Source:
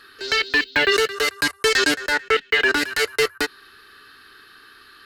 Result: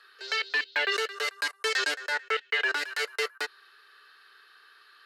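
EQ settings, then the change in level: HPF 470 Hz 24 dB/oct; high shelf 10000 Hz -10 dB; -8.0 dB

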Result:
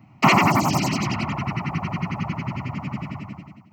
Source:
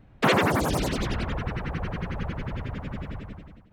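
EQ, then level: HPF 120 Hz 24 dB/oct; fixed phaser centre 2400 Hz, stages 8; +9.0 dB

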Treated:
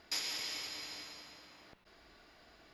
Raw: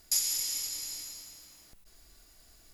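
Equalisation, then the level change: HPF 370 Hz 6 dB/oct; air absorption 320 m; +9.5 dB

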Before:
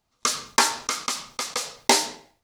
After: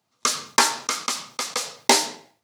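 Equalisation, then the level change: HPF 110 Hz 24 dB/oct; +1.5 dB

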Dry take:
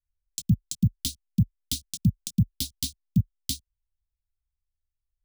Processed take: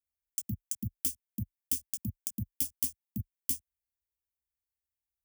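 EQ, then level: HPF 96 Hz 12 dB/oct; high shelf 8600 Hz +10.5 dB; fixed phaser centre 810 Hz, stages 8; -4.5 dB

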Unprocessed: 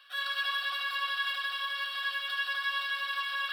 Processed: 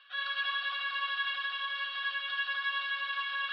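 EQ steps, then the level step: LPF 3700 Hz 24 dB/oct; low shelf 450 Hz -9.5 dB; 0.0 dB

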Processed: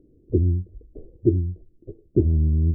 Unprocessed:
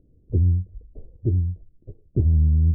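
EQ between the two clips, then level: bell 350 Hz +14.5 dB 1.1 oct; -3.0 dB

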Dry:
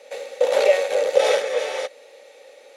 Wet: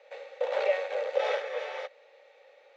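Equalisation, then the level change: Bessel high-pass 910 Hz, order 2; LPF 1700 Hz 6 dB/oct; air absorption 120 m; -2.5 dB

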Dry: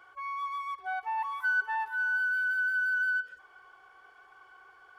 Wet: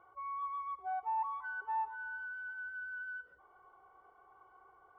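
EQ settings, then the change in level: polynomial smoothing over 65 samples; bell 71 Hz +3 dB 0.86 oct; -1.5 dB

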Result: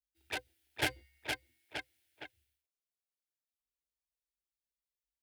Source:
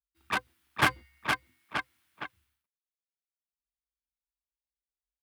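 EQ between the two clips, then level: fixed phaser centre 470 Hz, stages 4; -3.0 dB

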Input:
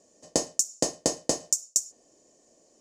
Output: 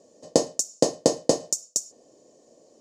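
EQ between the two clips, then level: ten-band EQ 125 Hz +9 dB, 250 Hz +6 dB, 500 Hz +11 dB, 1000 Hz +5 dB, 4000 Hz +7 dB; -3.5 dB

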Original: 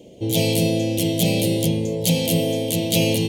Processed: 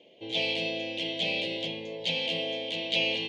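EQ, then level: HPF 1500 Hz 6 dB/oct; LPF 3200 Hz 24 dB/oct; tilt +1.5 dB/oct; 0.0 dB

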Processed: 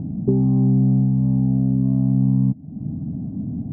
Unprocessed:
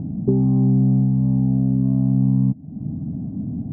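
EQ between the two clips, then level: air absorption 160 m; 0.0 dB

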